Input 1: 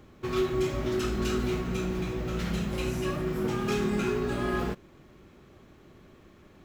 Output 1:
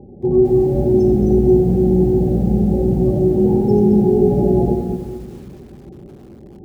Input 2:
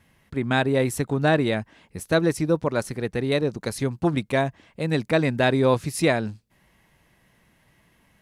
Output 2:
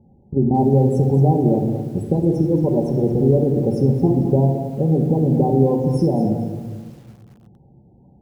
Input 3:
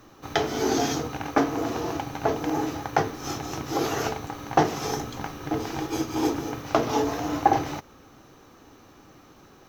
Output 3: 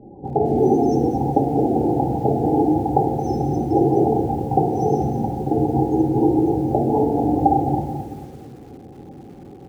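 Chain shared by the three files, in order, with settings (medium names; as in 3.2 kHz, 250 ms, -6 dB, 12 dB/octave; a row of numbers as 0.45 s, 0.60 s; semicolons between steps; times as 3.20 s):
elliptic band-stop 780–5300 Hz, stop band 40 dB; treble shelf 3.2 kHz -10 dB; compression 16:1, threshold -25 dBFS; comb of notches 640 Hz; loudest bins only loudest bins 32; distance through air 72 m; simulated room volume 1000 m³, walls mixed, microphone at 1.2 m; bit-crushed delay 220 ms, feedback 35%, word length 9-bit, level -11 dB; peak normalisation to -3 dBFS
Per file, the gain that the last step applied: +14.5 dB, +11.0 dB, +12.0 dB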